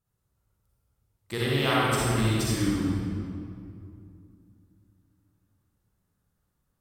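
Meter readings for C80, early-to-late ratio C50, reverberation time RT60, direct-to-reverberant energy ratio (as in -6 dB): -2.5 dB, -6.0 dB, 2.5 s, -7.5 dB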